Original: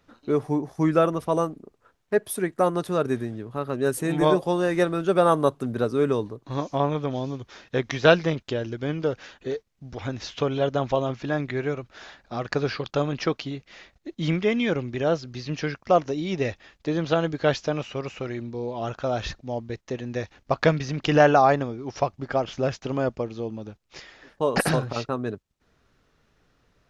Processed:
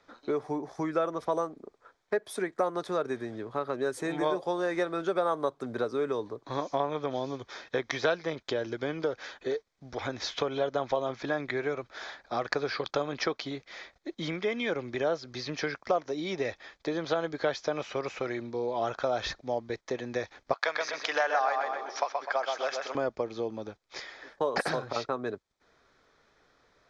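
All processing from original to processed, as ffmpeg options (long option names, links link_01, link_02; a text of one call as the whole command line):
ffmpeg -i in.wav -filter_complex "[0:a]asettb=1/sr,asplit=3[link_01][link_02][link_03];[link_01]atrim=end=20.534[link_04];[link_02]atrim=start=20.53:end=22.95,asetpts=PTS-STARTPTS,afade=type=in:duration=0.004:curve=qsin,afade=type=out:start_time=2.416:duration=0.004:curve=qsin,highpass=840,asplit=2[link_05][link_06];[link_06]adelay=126,lowpass=frequency=4600:poles=1,volume=-5dB,asplit=2[link_07][link_08];[link_08]adelay=126,lowpass=frequency=4600:poles=1,volume=0.38,asplit=2[link_09][link_10];[link_10]adelay=126,lowpass=frequency=4600:poles=1,volume=0.38,asplit=2[link_11][link_12];[link_12]adelay=126,lowpass=frequency=4600:poles=1,volume=0.38,asplit=2[link_13][link_14];[link_14]adelay=126,lowpass=frequency=4600:poles=1,volume=0.38[link_15];[link_05][link_07][link_09][link_11][link_13][link_15]amix=inputs=6:normalize=0,atrim=end_sample=106722[link_16];[link_03]atrim=start=22.946[link_17];[link_04][link_16]acrossfade=duration=0.004:curve1=hsin:curve2=qsin[link_18];[link_18][link_17]acrossfade=duration=0.004:curve1=qsin:curve2=hsin,acompressor=threshold=-28dB:ratio=4,acrossover=split=340 7500:gain=0.224 1 0.0631[link_19][link_20][link_21];[link_19][link_20][link_21]amix=inputs=3:normalize=0,bandreject=frequency=2800:width=5.2,volume=3.5dB" out.wav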